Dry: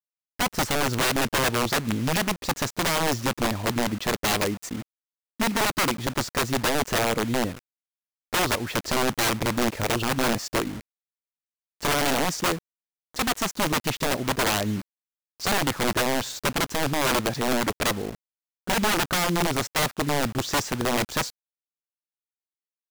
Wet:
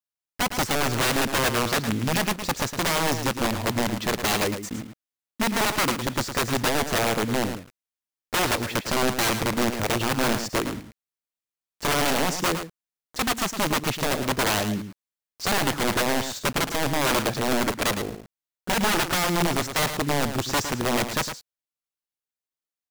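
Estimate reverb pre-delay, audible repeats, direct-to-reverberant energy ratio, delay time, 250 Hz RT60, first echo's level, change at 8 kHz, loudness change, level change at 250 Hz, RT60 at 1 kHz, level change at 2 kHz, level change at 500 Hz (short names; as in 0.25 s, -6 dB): none, 1, none, 0.11 s, none, -9.0 dB, +0.5 dB, +0.5 dB, +0.5 dB, none, +0.5 dB, +0.5 dB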